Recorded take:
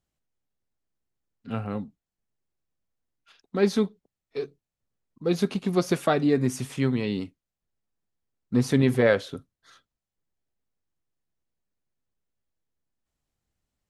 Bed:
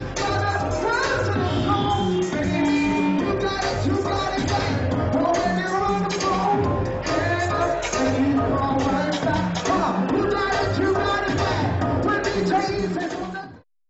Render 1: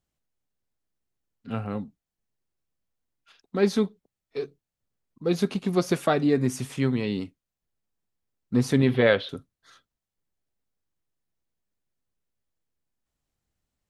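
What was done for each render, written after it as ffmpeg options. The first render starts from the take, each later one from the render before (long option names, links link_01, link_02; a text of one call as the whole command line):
ffmpeg -i in.wav -filter_complex "[0:a]asettb=1/sr,asplit=3[link_01][link_02][link_03];[link_01]atrim=end=8.884[link_04];[link_02]atrim=start=8.88:end=9.29,asetpts=PTS-STARTPTS,afade=type=in:duration=0.004:curve=qsin,afade=type=out:start_time=0.406:duration=0.004:curve=qsin,highshelf=frequency=5100:width_type=q:width=3:gain=-14[link_05];[link_03]atrim=start=9.286[link_06];[link_04][link_05]acrossfade=duration=0.004:curve1=hsin:curve2=qsin[link_07];[link_07][link_06]acrossfade=duration=0.004:curve1=qsin:curve2=hsin" out.wav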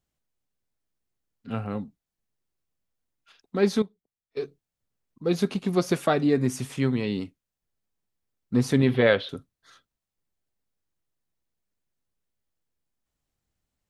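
ffmpeg -i in.wav -filter_complex "[0:a]asplit=3[link_01][link_02][link_03];[link_01]atrim=end=3.822[link_04];[link_02]atrim=start=3.818:end=4.372,asetpts=PTS-STARTPTS,volume=-11.5dB[link_05];[link_03]atrim=start=4.368[link_06];[link_04][link_05]acrossfade=duration=0.004:curve1=hsin:curve2=hsin[link_07];[link_07][link_06]acrossfade=duration=0.004:curve1=hsin:curve2=hsin" out.wav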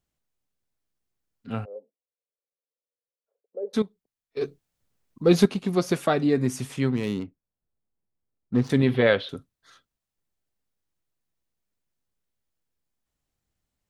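ffmpeg -i in.wav -filter_complex "[0:a]asplit=3[link_01][link_02][link_03];[link_01]afade=type=out:start_time=1.64:duration=0.02[link_04];[link_02]asuperpass=centerf=510:order=4:qfactor=3.7,afade=type=in:start_time=1.64:duration=0.02,afade=type=out:start_time=3.73:duration=0.02[link_05];[link_03]afade=type=in:start_time=3.73:duration=0.02[link_06];[link_04][link_05][link_06]amix=inputs=3:normalize=0,asettb=1/sr,asplit=3[link_07][link_08][link_09];[link_07]atrim=end=4.414[link_10];[link_08]atrim=start=4.41:end=5.46,asetpts=PTS-STARTPTS,afade=type=in:duration=0.004:curve=qsin,afade=type=out:start_time=1.046:duration=0.004:curve=qsin,acontrast=82[link_11];[link_09]atrim=start=5.456[link_12];[link_10][link_11]acrossfade=duration=0.004:curve1=hsin:curve2=qsin[link_13];[link_13][link_12]acrossfade=duration=0.004:curve1=qsin:curve2=hsin,asettb=1/sr,asplit=3[link_14][link_15][link_16];[link_14]atrim=end=6.894[link_17];[link_15]atrim=start=6.89:end=8.7,asetpts=PTS-STARTPTS,afade=type=in:duration=0.004:curve=qsin,afade=type=out:start_time=1.806:duration=0.004:curve=qsin,adynamicsmooth=sensitivity=7:basefreq=1200[link_18];[link_16]atrim=start=8.696[link_19];[link_17][link_18]acrossfade=duration=0.004:curve1=hsin:curve2=qsin[link_20];[link_20][link_19]acrossfade=duration=0.004:curve1=qsin:curve2=hsin" out.wav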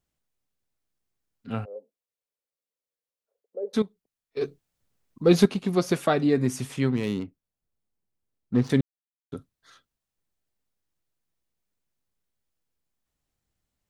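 ffmpeg -i in.wav -filter_complex "[0:a]asplit=3[link_01][link_02][link_03];[link_01]atrim=end=8.81,asetpts=PTS-STARTPTS,afade=type=out:start_time=8.806:duration=0.004:curve=hsin[link_04];[link_02]atrim=start=8.81:end=9.32,asetpts=PTS-STARTPTS,volume=0[link_05];[link_03]atrim=start=9.32,asetpts=PTS-STARTPTS,afade=type=in:duration=0.004:curve=hsin[link_06];[link_04][link_05][link_06]concat=n=3:v=0:a=1" out.wav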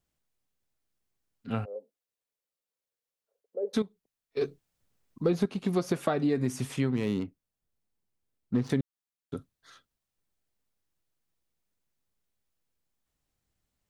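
ffmpeg -i in.wav -filter_complex "[0:a]acrossover=split=1800[link_01][link_02];[link_02]alimiter=level_in=5dB:limit=-24dB:level=0:latency=1:release=198,volume=-5dB[link_03];[link_01][link_03]amix=inputs=2:normalize=0,acompressor=threshold=-23dB:ratio=6" out.wav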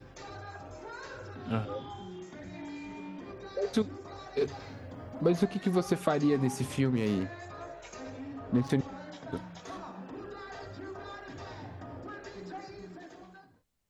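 ffmpeg -i in.wav -i bed.wav -filter_complex "[1:a]volume=-22dB[link_01];[0:a][link_01]amix=inputs=2:normalize=0" out.wav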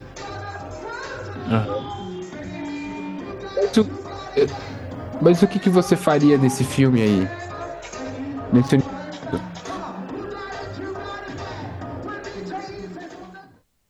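ffmpeg -i in.wav -af "volume=12dB,alimiter=limit=-3dB:level=0:latency=1" out.wav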